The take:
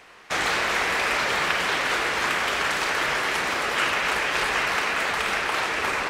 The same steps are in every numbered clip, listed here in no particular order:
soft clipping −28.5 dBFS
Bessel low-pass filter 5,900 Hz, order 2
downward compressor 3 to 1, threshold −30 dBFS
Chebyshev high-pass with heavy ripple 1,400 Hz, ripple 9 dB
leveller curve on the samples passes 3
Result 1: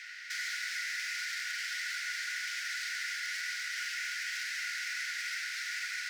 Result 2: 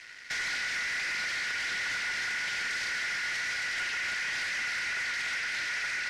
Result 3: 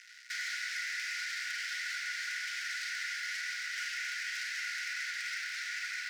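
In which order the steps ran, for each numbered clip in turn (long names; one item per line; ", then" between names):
downward compressor, then soft clipping, then Bessel low-pass filter, then leveller curve on the samples, then Chebyshev high-pass with heavy ripple
downward compressor, then Chebyshev high-pass with heavy ripple, then leveller curve on the samples, then soft clipping, then Bessel low-pass filter
Bessel low-pass filter, then leveller curve on the samples, then downward compressor, then soft clipping, then Chebyshev high-pass with heavy ripple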